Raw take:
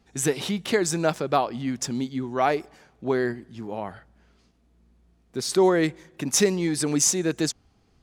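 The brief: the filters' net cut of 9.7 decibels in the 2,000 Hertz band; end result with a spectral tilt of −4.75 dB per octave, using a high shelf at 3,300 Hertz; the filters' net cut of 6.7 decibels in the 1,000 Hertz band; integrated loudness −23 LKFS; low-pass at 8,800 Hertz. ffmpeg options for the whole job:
ffmpeg -i in.wav -af "lowpass=8800,equalizer=frequency=1000:width_type=o:gain=-8,equalizer=frequency=2000:width_type=o:gain=-8.5,highshelf=frequency=3300:gain=-3.5,volume=4dB" out.wav

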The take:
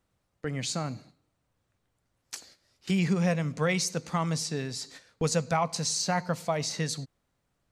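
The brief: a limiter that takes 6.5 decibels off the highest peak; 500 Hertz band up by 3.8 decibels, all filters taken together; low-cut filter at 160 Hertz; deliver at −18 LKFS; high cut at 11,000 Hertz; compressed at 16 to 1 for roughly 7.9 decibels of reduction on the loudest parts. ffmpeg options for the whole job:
ffmpeg -i in.wav -af "highpass=160,lowpass=11000,equalizer=frequency=500:width_type=o:gain=4.5,acompressor=threshold=-27dB:ratio=16,volume=17.5dB,alimiter=limit=-7dB:level=0:latency=1" out.wav

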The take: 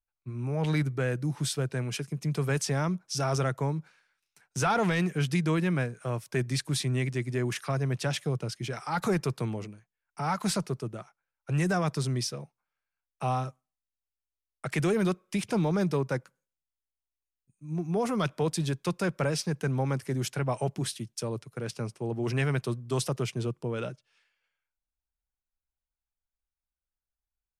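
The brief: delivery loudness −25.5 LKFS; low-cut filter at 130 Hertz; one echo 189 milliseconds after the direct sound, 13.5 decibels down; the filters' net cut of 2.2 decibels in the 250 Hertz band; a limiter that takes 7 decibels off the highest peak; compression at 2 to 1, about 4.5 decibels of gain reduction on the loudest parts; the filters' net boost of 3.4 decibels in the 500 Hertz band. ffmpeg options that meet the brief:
ffmpeg -i in.wav -af "highpass=130,equalizer=frequency=250:width_type=o:gain=-4,equalizer=frequency=500:width_type=o:gain=5.5,acompressor=threshold=-29dB:ratio=2,alimiter=level_in=1.5dB:limit=-24dB:level=0:latency=1,volume=-1.5dB,aecho=1:1:189:0.211,volume=10dB" out.wav

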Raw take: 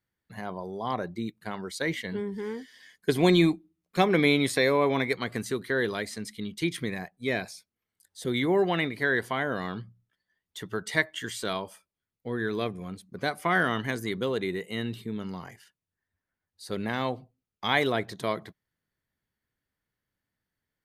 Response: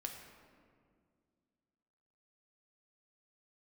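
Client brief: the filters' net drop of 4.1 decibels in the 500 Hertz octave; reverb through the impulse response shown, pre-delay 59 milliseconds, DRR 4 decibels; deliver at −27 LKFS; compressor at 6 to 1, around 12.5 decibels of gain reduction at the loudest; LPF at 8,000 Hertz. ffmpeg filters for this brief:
-filter_complex "[0:a]lowpass=8000,equalizer=frequency=500:width_type=o:gain=-5.5,acompressor=threshold=-32dB:ratio=6,asplit=2[link_01][link_02];[1:a]atrim=start_sample=2205,adelay=59[link_03];[link_02][link_03]afir=irnorm=-1:irlink=0,volume=-2dB[link_04];[link_01][link_04]amix=inputs=2:normalize=0,volume=9dB"

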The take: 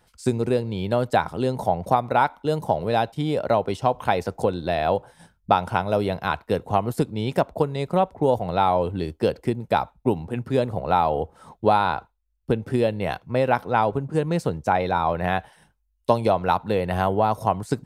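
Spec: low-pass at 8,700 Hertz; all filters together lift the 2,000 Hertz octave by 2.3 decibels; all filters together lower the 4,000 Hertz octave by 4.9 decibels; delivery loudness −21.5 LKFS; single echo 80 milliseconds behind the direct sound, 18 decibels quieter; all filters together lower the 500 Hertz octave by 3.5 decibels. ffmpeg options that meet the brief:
ffmpeg -i in.wav -af "lowpass=8700,equalizer=frequency=500:width_type=o:gain=-4.5,equalizer=frequency=2000:width_type=o:gain=5.5,equalizer=frequency=4000:width_type=o:gain=-8,aecho=1:1:80:0.126,volume=3.5dB" out.wav

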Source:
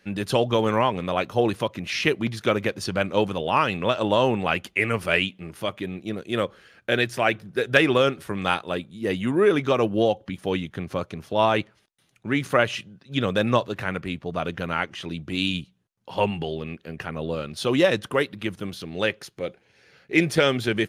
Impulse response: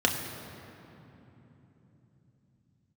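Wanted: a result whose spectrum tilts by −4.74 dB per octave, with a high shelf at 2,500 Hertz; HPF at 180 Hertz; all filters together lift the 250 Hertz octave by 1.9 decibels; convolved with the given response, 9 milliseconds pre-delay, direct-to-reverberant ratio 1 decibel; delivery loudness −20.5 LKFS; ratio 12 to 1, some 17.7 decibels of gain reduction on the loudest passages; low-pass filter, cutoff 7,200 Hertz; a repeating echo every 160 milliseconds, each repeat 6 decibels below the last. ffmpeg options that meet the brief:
-filter_complex "[0:a]highpass=180,lowpass=7200,equalizer=frequency=250:width_type=o:gain=4,highshelf=frequency=2500:gain=-7.5,acompressor=threshold=-32dB:ratio=12,aecho=1:1:160|320|480|640|800|960:0.501|0.251|0.125|0.0626|0.0313|0.0157,asplit=2[link_01][link_02];[1:a]atrim=start_sample=2205,adelay=9[link_03];[link_02][link_03]afir=irnorm=-1:irlink=0,volume=-13.5dB[link_04];[link_01][link_04]amix=inputs=2:normalize=0,volume=12.5dB"

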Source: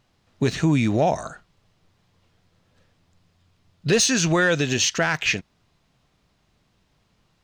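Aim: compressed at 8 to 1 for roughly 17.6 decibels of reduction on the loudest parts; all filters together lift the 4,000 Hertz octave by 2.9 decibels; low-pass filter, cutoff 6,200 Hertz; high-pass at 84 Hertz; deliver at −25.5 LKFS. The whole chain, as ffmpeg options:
ffmpeg -i in.wav -af "highpass=84,lowpass=6200,equalizer=frequency=4000:width_type=o:gain=4.5,acompressor=threshold=-34dB:ratio=8,volume=11.5dB" out.wav

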